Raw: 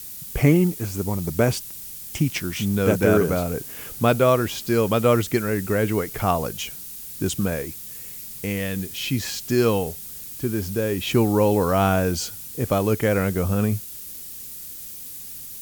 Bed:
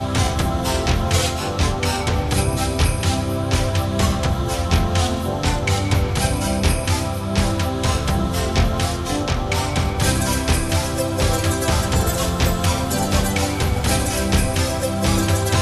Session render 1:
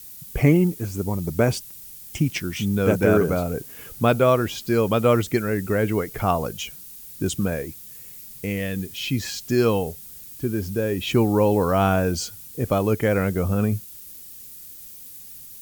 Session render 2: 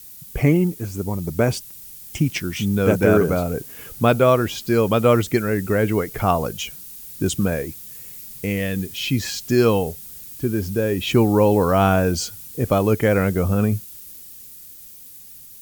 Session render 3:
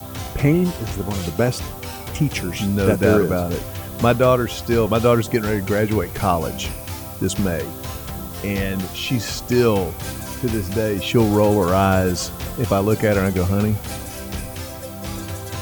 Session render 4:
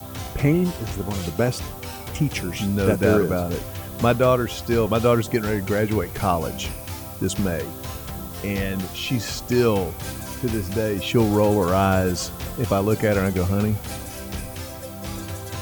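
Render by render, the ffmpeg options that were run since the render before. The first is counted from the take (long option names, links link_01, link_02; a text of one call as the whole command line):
ffmpeg -i in.wav -af "afftdn=noise_reduction=6:noise_floor=-37" out.wav
ffmpeg -i in.wav -af "dynaudnorm=framelen=110:gausssize=31:maxgain=4dB" out.wav
ffmpeg -i in.wav -i bed.wav -filter_complex "[1:a]volume=-11.5dB[link_01];[0:a][link_01]amix=inputs=2:normalize=0" out.wav
ffmpeg -i in.wav -af "volume=-2.5dB" out.wav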